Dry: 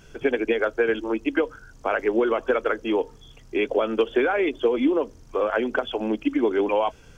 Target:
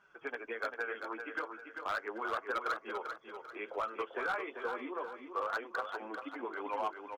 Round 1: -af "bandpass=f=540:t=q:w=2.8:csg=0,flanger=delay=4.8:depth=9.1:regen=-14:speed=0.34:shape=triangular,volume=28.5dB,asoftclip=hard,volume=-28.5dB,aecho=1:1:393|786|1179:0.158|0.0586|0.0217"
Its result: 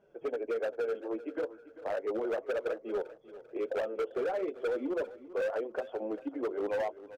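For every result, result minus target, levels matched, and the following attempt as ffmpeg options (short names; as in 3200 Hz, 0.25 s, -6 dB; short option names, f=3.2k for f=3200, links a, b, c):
1000 Hz band -9.0 dB; echo-to-direct -9 dB
-af "bandpass=f=1.2k:t=q:w=2.8:csg=0,flanger=delay=4.8:depth=9.1:regen=-14:speed=0.34:shape=triangular,volume=28.5dB,asoftclip=hard,volume=-28.5dB,aecho=1:1:393|786|1179:0.158|0.0586|0.0217"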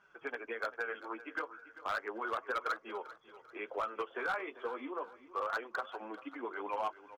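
echo-to-direct -9 dB
-af "bandpass=f=1.2k:t=q:w=2.8:csg=0,flanger=delay=4.8:depth=9.1:regen=-14:speed=0.34:shape=triangular,volume=28.5dB,asoftclip=hard,volume=-28.5dB,aecho=1:1:393|786|1179|1572:0.447|0.165|0.0612|0.0226"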